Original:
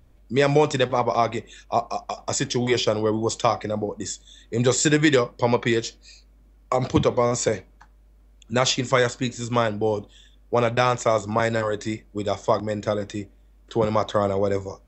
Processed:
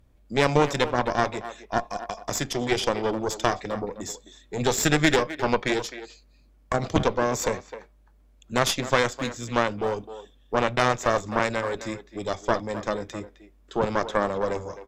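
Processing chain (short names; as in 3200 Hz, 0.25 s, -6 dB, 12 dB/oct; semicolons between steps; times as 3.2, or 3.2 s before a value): added harmonics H 4 -10 dB, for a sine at -4 dBFS; speakerphone echo 0.26 s, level -12 dB; gain -4 dB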